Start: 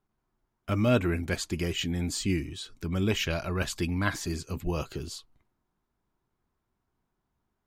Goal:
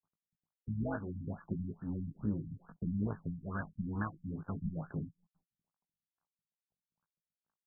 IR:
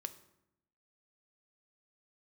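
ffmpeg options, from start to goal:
-filter_complex "[0:a]asetrate=46722,aresample=44100,atempo=0.943874,lowpass=frequency=2800:width=0.5412,lowpass=frequency=2800:width=1.3066,acrusher=bits=9:dc=4:mix=0:aa=0.000001,lowshelf=frequency=630:width_type=q:width=1.5:gain=-10.5,tremolo=f=180:d=0.788,agate=range=-16dB:threshold=-55dB:ratio=16:detection=peak,acompressor=threshold=-56dB:ratio=2.5,equalizer=frequency=170:width=1.3:gain=14,asplit=2[link_01][link_02];[link_02]adelay=19,volume=-5.5dB[link_03];[link_01][link_03]amix=inputs=2:normalize=0,afftfilt=real='re*lt(b*sr/1024,250*pow(1800/250,0.5+0.5*sin(2*PI*2.3*pts/sr)))':imag='im*lt(b*sr/1024,250*pow(1800/250,0.5+0.5*sin(2*PI*2.3*pts/sr)))':win_size=1024:overlap=0.75,volume=11dB"

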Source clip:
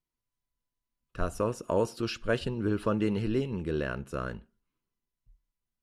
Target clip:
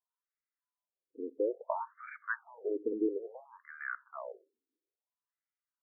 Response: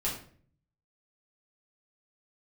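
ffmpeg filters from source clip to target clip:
-af "aeval=exprs='0.2*(cos(1*acos(clip(val(0)/0.2,-1,1)))-cos(1*PI/2))+0.00708*(cos(6*acos(clip(val(0)/0.2,-1,1)))-cos(6*PI/2))+0.00141*(cos(8*acos(clip(val(0)/0.2,-1,1)))-cos(8*PI/2))':channel_layout=same,afftfilt=real='re*between(b*sr/1024,340*pow(1700/340,0.5+0.5*sin(2*PI*0.59*pts/sr))/1.41,340*pow(1700/340,0.5+0.5*sin(2*PI*0.59*pts/sr))*1.41)':imag='im*between(b*sr/1024,340*pow(1700/340,0.5+0.5*sin(2*PI*0.59*pts/sr))/1.41,340*pow(1700/340,0.5+0.5*sin(2*PI*0.59*pts/sr))*1.41)':win_size=1024:overlap=0.75"

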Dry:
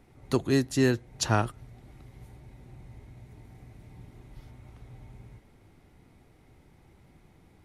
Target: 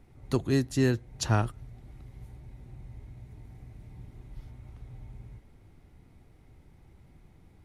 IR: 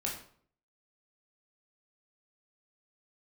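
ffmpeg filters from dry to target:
-af "lowshelf=frequency=130:gain=9.5,volume=-3.5dB"

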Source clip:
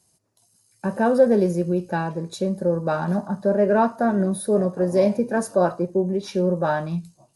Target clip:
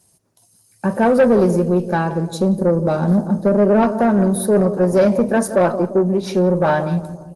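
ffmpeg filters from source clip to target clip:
ffmpeg -i in.wav -filter_complex "[0:a]asettb=1/sr,asplit=3[link_01][link_02][link_03];[link_01]atrim=end=2.294[link_04];[link_02]atrim=start=2.29:end=3.83,asetpts=PTS-STARTPTS,afade=type=in:duration=0.004:curve=qsin,afade=type=out:start_time=1.536:duration=0.004:curve=qsin,equalizer=frequency=250:width_type=o:width=1:gain=4,equalizer=frequency=1000:width_type=o:width=1:gain=-5,equalizer=frequency=2000:width_type=o:width=1:gain=-8[link_05];[link_03]atrim=start=3.826[link_06];[link_04][link_05]acrossfade=duration=0.004:curve1=hsin:curve2=qsin[link_07];[link_07][link_06]acrossfade=duration=0.004:curve1=qsin:curve2=hsin,asoftclip=type=hard:threshold=-8.5dB,asplit=2[link_08][link_09];[link_09]adelay=173,lowpass=frequency=1000:poles=1,volume=-12dB,asplit=2[link_10][link_11];[link_11]adelay=173,lowpass=frequency=1000:poles=1,volume=0.53,asplit=2[link_12][link_13];[link_13]adelay=173,lowpass=frequency=1000:poles=1,volume=0.53,asplit=2[link_14][link_15];[link_15]adelay=173,lowpass=frequency=1000:poles=1,volume=0.53,asplit=2[link_16][link_17];[link_17]adelay=173,lowpass=frequency=1000:poles=1,volume=0.53,asplit=2[link_18][link_19];[link_19]adelay=173,lowpass=frequency=1000:poles=1,volume=0.53[link_20];[link_08][link_10][link_12][link_14][link_16][link_18][link_20]amix=inputs=7:normalize=0,asoftclip=type=tanh:threshold=-15dB,volume=7.5dB" -ar 48000 -c:a libopus -b:a 24k out.opus

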